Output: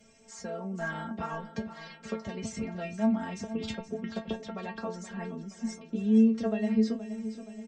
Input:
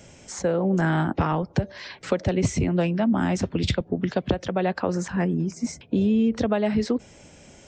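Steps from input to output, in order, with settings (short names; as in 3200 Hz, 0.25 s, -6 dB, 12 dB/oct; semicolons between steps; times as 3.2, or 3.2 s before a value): metallic resonator 220 Hz, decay 0.23 s, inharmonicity 0.002; feedback echo 0.473 s, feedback 54%, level -13 dB; gain +2 dB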